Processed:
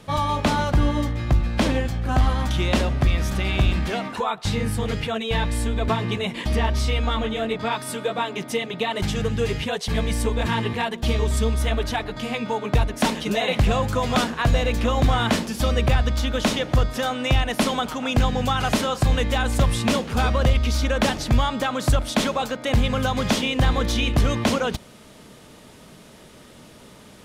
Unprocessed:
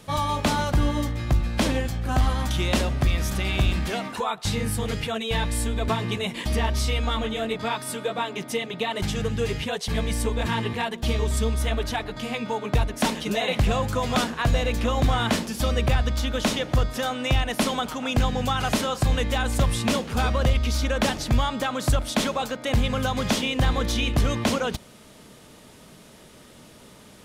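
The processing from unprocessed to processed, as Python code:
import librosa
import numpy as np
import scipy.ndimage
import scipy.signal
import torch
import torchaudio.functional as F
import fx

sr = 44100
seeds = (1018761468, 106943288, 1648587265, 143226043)

y = fx.high_shelf(x, sr, hz=6000.0, db=fx.steps((0.0, -9.0), (7.71, -3.5)))
y = F.gain(torch.from_numpy(y), 2.5).numpy()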